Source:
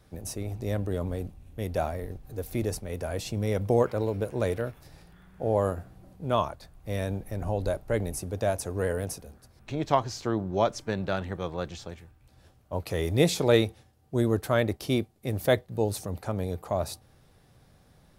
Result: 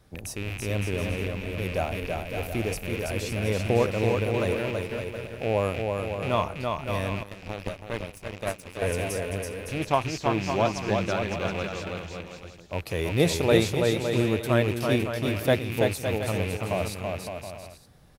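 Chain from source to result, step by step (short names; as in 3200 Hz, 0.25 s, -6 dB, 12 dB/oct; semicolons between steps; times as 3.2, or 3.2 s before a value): rattling part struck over -37 dBFS, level -25 dBFS; bouncing-ball echo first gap 0.33 s, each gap 0.7×, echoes 5; 7.23–8.82 power-law curve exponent 2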